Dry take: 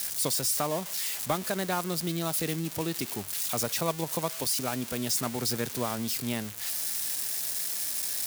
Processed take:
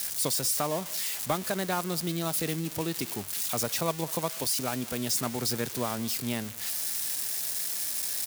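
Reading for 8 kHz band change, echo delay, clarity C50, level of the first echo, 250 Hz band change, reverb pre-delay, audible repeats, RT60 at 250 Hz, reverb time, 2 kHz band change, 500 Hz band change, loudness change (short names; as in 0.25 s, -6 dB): 0.0 dB, 0.198 s, none, -23.5 dB, 0.0 dB, none, 1, none, none, 0.0 dB, 0.0 dB, 0.0 dB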